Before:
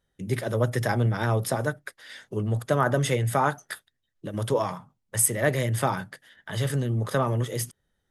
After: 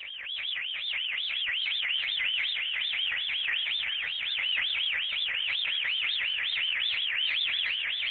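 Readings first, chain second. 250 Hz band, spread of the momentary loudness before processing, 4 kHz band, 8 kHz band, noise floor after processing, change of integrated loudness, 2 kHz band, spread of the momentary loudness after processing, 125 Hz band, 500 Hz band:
under -35 dB, 17 LU, +16.5 dB, under -35 dB, -35 dBFS, -1.0 dB, +5.5 dB, 3 LU, under -35 dB, under -30 dB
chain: infinite clipping; Schroeder reverb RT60 1.6 s, combs from 33 ms, DRR -1 dB; transient shaper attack -11 dB, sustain +12 dB; on a send: swelling echo 0.129 s, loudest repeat 8, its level -8.5 dB; on the sum: wah 5.5 Hz 260–1500 Hz, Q 11; inverted band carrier 3600 Hz; wow and flutter 140 cents; transient shaper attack -8 dB, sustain +7 dB; bell 310 Hz -7 dB 1.5 oct; warbling echo 0.401 s, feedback 40%, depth 133 cents, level -12.5 dB; gain +5.5 dB

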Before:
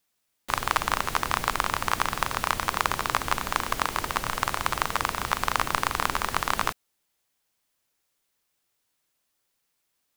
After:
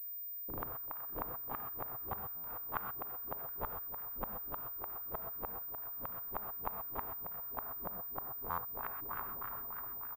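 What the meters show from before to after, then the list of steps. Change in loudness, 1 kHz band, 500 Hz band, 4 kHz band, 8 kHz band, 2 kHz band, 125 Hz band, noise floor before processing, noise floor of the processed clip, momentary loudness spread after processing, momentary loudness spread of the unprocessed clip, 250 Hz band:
-12.5 dB, -17.0 dB, -11.5 dB, under -35 dB, under -40 dB, -23.0 dB, -15.0 dB, -77 dBFS, -44 dBFS, 1 LU, 3 LU, -13.5 dB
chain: regenerating reverse delay 0.21 s, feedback 77%, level -0.5 dB; de-hum 231.4 Hz, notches 5; dynamic EQ 3200 Hz, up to +6 dB, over -38 dBFS, Q 1.1; reverse; compressor 16:1, threshold -29 dBFS, peak gain reduction 16.5 dB; reverse; LFO low-pass sine 3.3 Hz 320–1600 Hz; flipped gate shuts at -27 dBFS, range -30 dB; on a send: echo 0.722 s -23 dB; on the sum: non-linear reverb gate 0.15 s rising, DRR 6 dB; stuck buffer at 2.36/8.5, samples 512, times 6; pulse-width modulation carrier 15000 Hz; gain +1.5 dB

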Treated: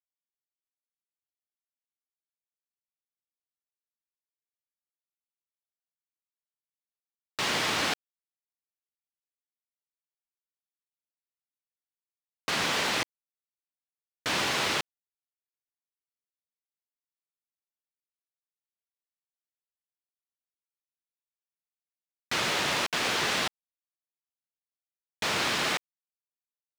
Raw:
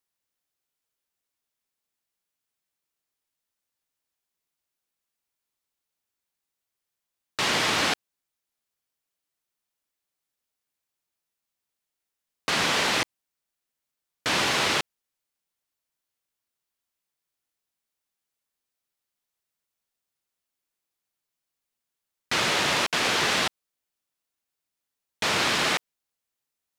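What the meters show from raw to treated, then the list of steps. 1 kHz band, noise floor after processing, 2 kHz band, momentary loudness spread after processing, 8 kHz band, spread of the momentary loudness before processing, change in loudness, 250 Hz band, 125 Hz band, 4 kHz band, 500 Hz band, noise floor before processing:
-4.0 dB, under -85 dBFS, -4.0 dB, 9 LU, -4.0 dB, 9 LU, -4.0 dB, -4.0 dB, -4.0 dB, -4.0 dB, -4.0 dB, under -85 dBFS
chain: bit-crush 7-bit; gain -4 dB

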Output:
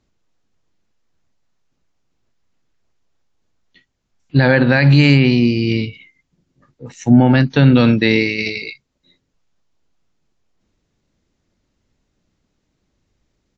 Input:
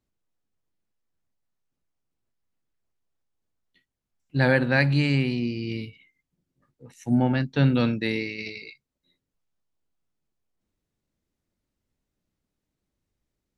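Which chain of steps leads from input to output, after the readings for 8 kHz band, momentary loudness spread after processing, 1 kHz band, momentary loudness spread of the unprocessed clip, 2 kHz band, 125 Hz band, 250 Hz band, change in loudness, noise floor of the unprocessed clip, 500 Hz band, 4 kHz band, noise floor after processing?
n/a, 13 LU, +9.0 dB, 15 LU, +9.0 dB, +11.0 dB, +11.5 dB, +10.5 dB, -84 dBFS, +9.5 dB, +11.5 dB, -71 dBFS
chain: downsampling 16000 Hz; maximiser +14.5 dB; gain -1 dB; WMA 64 kbps 48000 Hz

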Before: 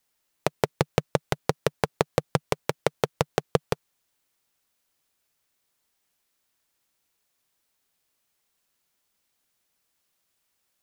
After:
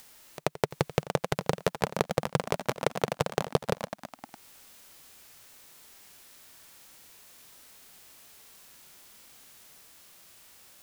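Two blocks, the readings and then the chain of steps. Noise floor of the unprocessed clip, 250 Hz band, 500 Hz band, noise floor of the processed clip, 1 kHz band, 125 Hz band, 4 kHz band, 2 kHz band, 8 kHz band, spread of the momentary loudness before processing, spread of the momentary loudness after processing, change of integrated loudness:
-76 dBFS, -2.0 dB, -2.5 dB, -65 dBFS, -2.0 dB, -3.0 dB, -2.0 dB, -2.0 dB, -1.0 dB, 5 LU, 21 LU, -2.5 dB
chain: harmonic-percussive split percussive -10 dB; pre-echo 84 ms -17.5 dB; upward compressor, threshold -45 dBFS; echoes that change speed 0.709 s, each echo +3 st, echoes 3, each echo -6 dB; gain +6.5 dB

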